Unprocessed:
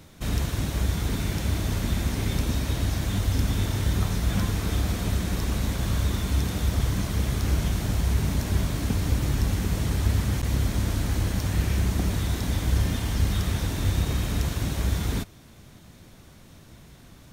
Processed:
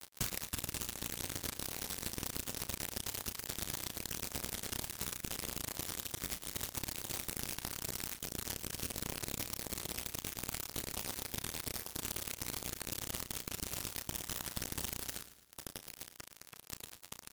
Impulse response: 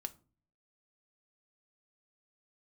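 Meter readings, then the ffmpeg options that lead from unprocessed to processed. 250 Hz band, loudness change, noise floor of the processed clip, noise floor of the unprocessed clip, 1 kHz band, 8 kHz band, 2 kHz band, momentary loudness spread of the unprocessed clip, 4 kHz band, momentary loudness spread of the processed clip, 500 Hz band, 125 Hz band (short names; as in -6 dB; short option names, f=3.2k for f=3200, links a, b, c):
-18.5 dB, -13.0 dB, -59 dBFS, -50 dBFS, -11.5 dB, -2.5 dB, -10.0 dB, 2 LU, -7.0 dB, 8 LU, -13.0 dB, -25.0 dB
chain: -filter_complex "[0:a]highpass=44,flanger=delay=4.4:depth=8.6:regen=-44:speed=1.1:shape=triangular,highshelf=f=11k:g=-2.5,alimiter=level_in=3.5dB:limit=-24dB:level=0:latency=1:release=219,volume=-3.5dB,bass=f=250:g=6,treble=f=4k:g=13,aeval=exprs='(mod(12.6*val(0)+1,2)-1)/12.6':c=same,acompressor=threshold=-44dB:ratio=12,asoftclip=type=tanh:threshold=-39dB,acrusher=bits=6:mix=0:aa=0.000001,asplit=2[a][b];[b]adelay=33,volume=-10.5dB[c];[a][c]amix=inputs=2:normalize=0,aecho=1:1:111|222|333|444|555:0.188|0.0961|0.049|0.025|0.0127,volume=10.5dB" -ar 44100 -c:a libmp3lame -b:a 96k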